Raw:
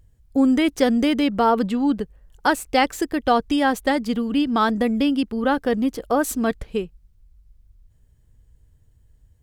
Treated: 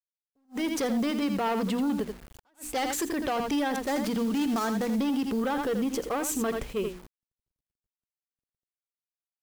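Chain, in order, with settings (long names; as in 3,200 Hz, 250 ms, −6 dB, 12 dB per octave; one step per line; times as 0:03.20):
0:03.76–0:04.96: gap after every zero crossing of 0.12 ms
0:05.50–0:06.67: EQ curve with evenly spaced ripples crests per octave 0.72, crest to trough 6 dB
soft clipping −18.5 dBFS, distortion −11 dB
low-shelf EQ 150 Hz −9.5 dB
mains-hum notches 60/120/180/240/300/360 Hz
single-tap delay 83 ms −11.5 dB
brickwall limiter −27 dBFS, peak gain reduction 12 dB
automatic gain control gain up to 5.5 dB
bit-depth reduction 8 bits, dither none
level that may rise only so fast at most 380 dB per second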